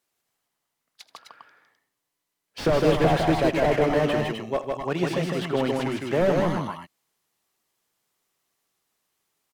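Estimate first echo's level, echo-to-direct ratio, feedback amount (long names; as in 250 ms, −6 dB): −16.0 dB, −1.0 dB, repeats not evenly spaced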